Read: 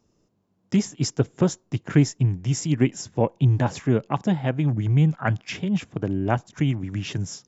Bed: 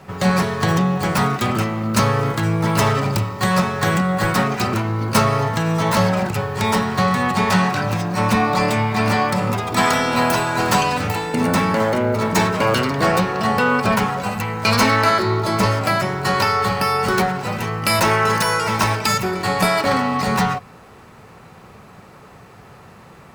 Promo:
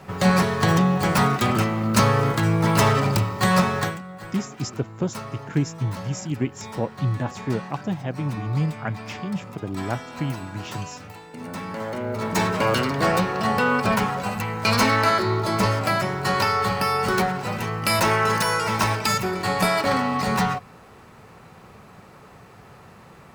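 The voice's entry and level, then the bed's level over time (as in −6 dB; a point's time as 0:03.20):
3.60 s, −5.0 dB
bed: 0:03.79 −1 dB
0:04.00 −19 dB
0:11.30 −19 dB
0:12.52 −3.5 dB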